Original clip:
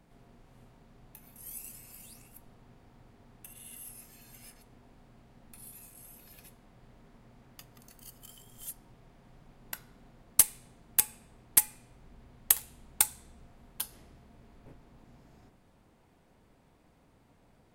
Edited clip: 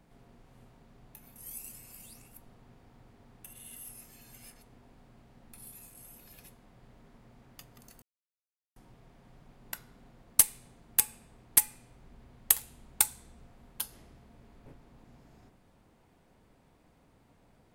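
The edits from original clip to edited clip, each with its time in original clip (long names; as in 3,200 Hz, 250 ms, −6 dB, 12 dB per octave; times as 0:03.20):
0:08.02–0:08.76: silence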